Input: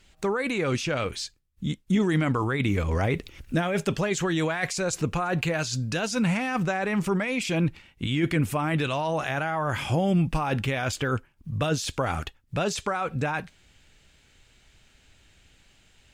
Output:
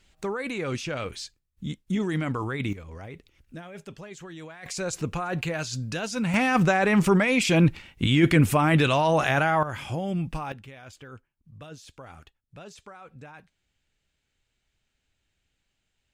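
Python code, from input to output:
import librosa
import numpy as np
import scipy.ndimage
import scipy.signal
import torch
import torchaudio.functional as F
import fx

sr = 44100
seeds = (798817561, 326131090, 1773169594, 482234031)

y = fx.gain(x, sr, db=fx.steps((0.0, -4.0), (2.73, -16.0), (4.66, -3.0), (6.34, 5.5), (9.63, -6.0), (10.52, -18.0)))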